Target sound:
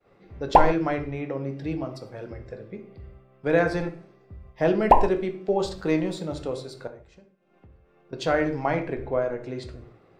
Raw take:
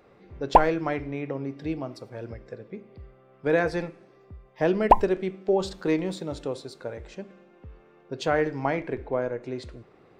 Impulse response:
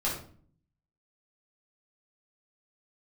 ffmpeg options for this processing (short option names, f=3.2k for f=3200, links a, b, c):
-filter_complex "[0:a]asettb=1/sr,asplit=3[a][b][c];[a]atrim=end=6.874[d];[b]atrim=start=6.87:end=8.13,asetpts=PTS-STARTPTS,afade=t=in:d=0.004:c=qsin,afade=t=out:st=1.256:d=0.004:c=qsin,acompressor=threshold=-50dB:ratio=12[e];[c]atrim=start=8.126[f];[d][e]acrossfade=d=0.004:c1=hsin:c2=qsin[g];[g][f]acrossfade=d=0.004:c1=qsin:c2=hsin,agate=range=-33dB:threshold=-52dB:ratio=3:detection=peak,asplit=2[h][i];[1:a]atrim=start_sample=2205,afade=t=out:st=0.21:d=0.01,atrim=end_sample=9702[j];[i][j]afir=irnorm=-1:irlink=0,volume=-11dB[k];[h][k]amix=inputs=2:normalize=0,volume=-1.5dB"